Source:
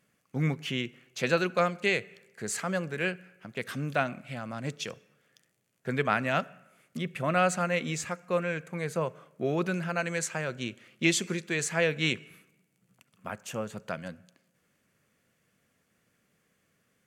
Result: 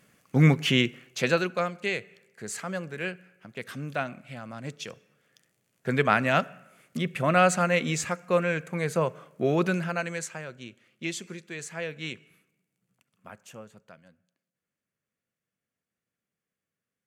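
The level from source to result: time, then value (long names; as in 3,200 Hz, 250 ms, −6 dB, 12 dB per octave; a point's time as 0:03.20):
0:00.83 +9.5 dB
0:01.63 −2.5 dB
0:04.78 −2.5 dB
0:05.94 +4.5 dB
0:09.69 +4.5 dB
0:10.58 −8 dB
0:13.46 −8 dB
0:14.03 −17.5 dB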